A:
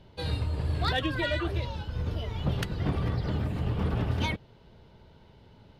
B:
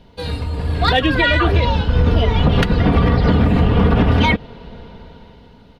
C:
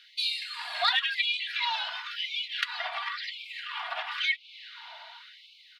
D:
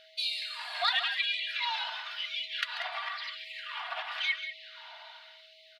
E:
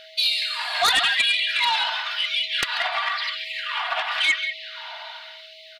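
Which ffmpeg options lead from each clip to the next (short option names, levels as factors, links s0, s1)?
-filter_complex "[0:a]aecho=1:1:4.2:0.49,acrossover=split=4200[s0][s1];[s0]dynaudnorm=f=200:g=11:m=4.47[s2];[s2][s1]amix=inputs=2:normalize=0,alimiter=limit=0.251:level=0:latency=1:release=97,volume=2.24"
-af "equalizer=f=125:t=o:w=1:g=-5,equalizer=f=250:t=o:w=1:g=10,equalizer=f=500:t=o:w=1:g=-5,equalizer=f=2000:t=o:w=1:g=5,equalizer=f=4000:t=o:w=1:g=8,acompressor=threshold=0.126:ratio=10,afftfilt=real='re*gte(b*sr/1024,580*pow(2200/580,0.5+0.5*sin(2*PI*0.95*pts/sr)))':imag='im*gte(b*sr/1024,580*pow(2200/580,0.5+0.5*sin(2*PI*0.95*pts/sr)))':win_size=1024:overlap=0.75,volume=0.794"
-af "aeval=exprs='val(0)+0.00158*sin(2*PI*640*n/s)':c=same,aecho=1:1:140|188:0.224|0.282,volume=0.708"
-af "aeval=exprs='0.188*sin(PI/2*2.24*val(0)/0.188)':c=same,volume=1.12"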